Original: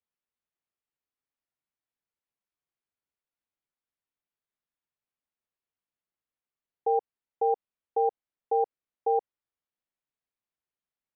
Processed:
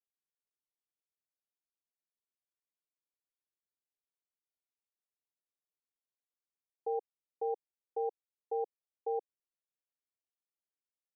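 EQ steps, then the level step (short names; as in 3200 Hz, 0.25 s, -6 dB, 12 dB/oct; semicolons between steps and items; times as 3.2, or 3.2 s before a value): ladder band-pass 480 Hz, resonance 25%; +1.5 dB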